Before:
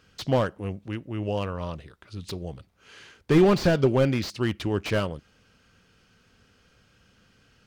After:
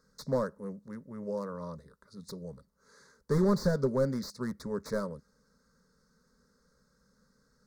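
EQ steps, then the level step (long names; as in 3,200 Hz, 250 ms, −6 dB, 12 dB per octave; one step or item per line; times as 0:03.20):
Butterworth band-reject 3,000 Hz, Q 1.8
parametric band 1,500 Hz −4 dB 0.91 octaves
phaser with its sweep stopped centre 490 Hz, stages 8
−4.0 dB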